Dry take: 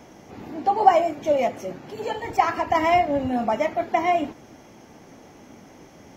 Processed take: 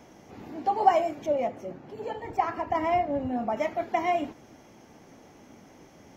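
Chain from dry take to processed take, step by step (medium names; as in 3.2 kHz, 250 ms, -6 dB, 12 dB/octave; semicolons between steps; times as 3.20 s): 1.26–3.57 s: treble shelf 2.1 kHz -10.5 dB; trim -5 dB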